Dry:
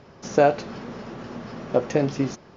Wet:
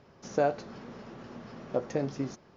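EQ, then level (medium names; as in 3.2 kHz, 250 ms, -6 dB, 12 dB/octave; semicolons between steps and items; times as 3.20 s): dynamic bell 2.7 kHz, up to -5 dB, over -47 dBFS, Q 2.1; -9.0 dB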